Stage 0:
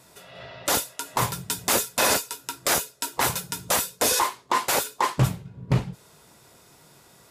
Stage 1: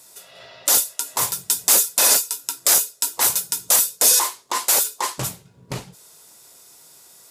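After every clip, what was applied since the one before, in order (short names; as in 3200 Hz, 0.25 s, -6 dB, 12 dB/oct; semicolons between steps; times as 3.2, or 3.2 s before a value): tone controls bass -9 dB, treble +13 dB; gain -2.5 dB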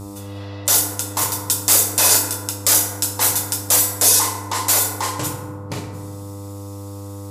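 buzz 100 Hz, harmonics 13, -33 dBFS -7 dB/oct; FDN reverb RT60 1.5 s, low-frequency decay 1.25×, high-frequency decay 0.4×, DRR 2 dB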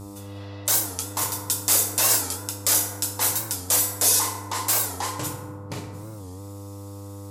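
record warp 45 rpm, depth 160 cents; gain -5.5 dB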